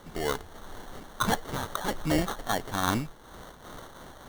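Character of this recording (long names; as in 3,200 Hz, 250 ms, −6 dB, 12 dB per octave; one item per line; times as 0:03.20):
a quantiser's noise floor 8 bits, dither triangular
phaser sweep stages 8, 0.47 Hz, lowest notch 240–3,900 Hz
aliases and images of a low sample rate 2,500 Hz, jitter 0%
amplitude modulation by smooth noise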